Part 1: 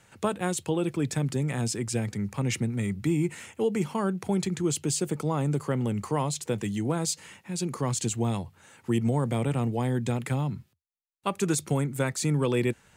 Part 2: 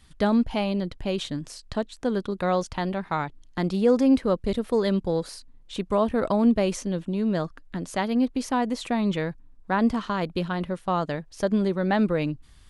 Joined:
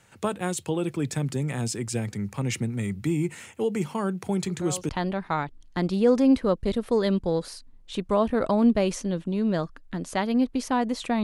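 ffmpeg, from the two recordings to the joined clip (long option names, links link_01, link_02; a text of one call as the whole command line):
ffmpeg -i cue0.wav -i cue1.wav -filter_complex "[1:a]asplit=2[link_01][link_02];[0:a]apad=whole_dur=11.23,atrim=end=11.23,atrim=end=4.892[link_03];[link_02]atrim=start=2.698:end=9.04[link_04];[link_01]atrim=start=2.25:end=2.7,asetpts=PTS-STARTPTS,volume=-13.5dB,afade=type=in:duration=0.004:curve=hsin,afade=type=out:start_time=0.446:duration=0.004:curve=hsin,adelay=4440[link_05];[link_03][link_04]acrossfade=duration=0.004:curve1=hsin:curve2=hsin[link_06];[link_06][link_05]amix=inputs=2:normalize=0" out.wav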